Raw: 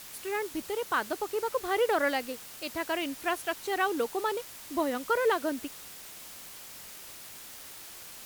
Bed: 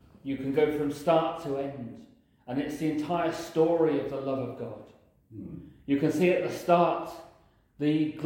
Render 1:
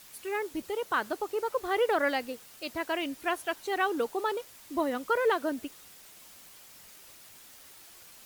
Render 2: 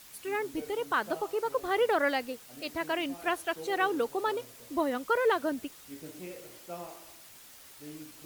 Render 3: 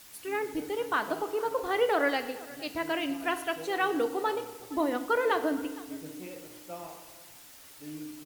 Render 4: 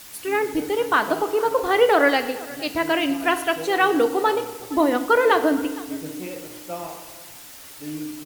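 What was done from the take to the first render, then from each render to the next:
denoiser 7 dB, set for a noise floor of -46 dBFS
add bed -20 dB
echo 0.464 s -20.5 dB; FDN reverb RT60 1.1 s, low-frequency decay 1.1×, high-frequency decay 0.9×, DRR 8.5 dB
gain +9.5 dB

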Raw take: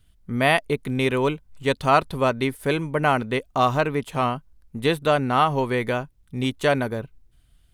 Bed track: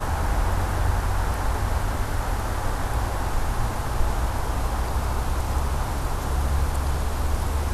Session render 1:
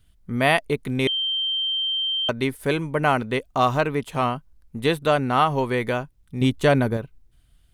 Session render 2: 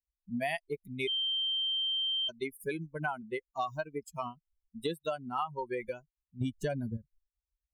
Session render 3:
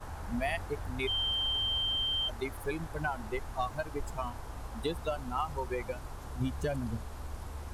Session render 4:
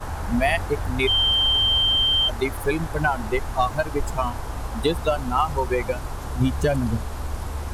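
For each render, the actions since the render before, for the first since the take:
1.07–2.29 bleep 3140 Hz -21.5 dBFS; 6.41–6.97 low shelf 320 Hz +8 dB
per-bin expansion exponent 3; compressor 6:1, threshold -31 dBFS, peak gain reduction 13 dB
add bed track -17 dB
gain +12 dB

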